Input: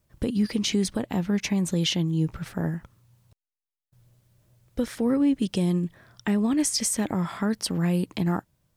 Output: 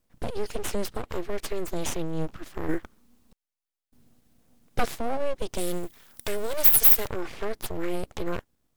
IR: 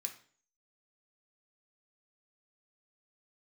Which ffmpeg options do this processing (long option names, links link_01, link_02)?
-filter_complex "[0:a]aeval=exprs='abs(val(0))':channel_layout=same,asplit=3[link_01][link_02][link_03];[link_01]afade=type=out:start_time=2.68:duration=0.02[link_04];[link_02]aeval=exprs='0.188*(cos(1*acos(clip(val(0)/0.188,-1,1)))-cos(1*PI/2))+0.015*(cos(5*acos(clip(val(0)/0.188,-1,1)))-cos(5*PI/2))+0.0841*(cos(6*acos(clip(val(0)/0.188,-1,1)))-cos(6*PI/2))':channel_layout=same,afade=type=in:start_time=2.68:duration=0.02,afade=type=out:start_time=4.96:duration=0.02[link_05];[link_03]afade=type=in:start_time=4.96:duration=0.02[link_06];[link_04][link_05][link_06]amix=inputs=3:normalize=0,asettb=1/sr,asplit=3[link_07][link_08][link_09];[link_07]atrim=end=5.584[link_10];[link_08]atrim=start=5.58:end=7.08,asetpts=PTS-STARTPTS,afade=type=in:duration=0.004:curve=qsin,afade=type=out:start_time=1.496:duration=0.004:curve=qsin,aemphasis=mode=production:type=75fm[link_11];[link_09]atrim=start=7.076[link_12];[link_10][link_11]acrossfade=duration=0.004:curve1=hsin:curve2=qsin[link_13];[link_13][link_12]acrossfade=duration=0.004:curve1=qsin:curve2=hsin,volume=-2dB"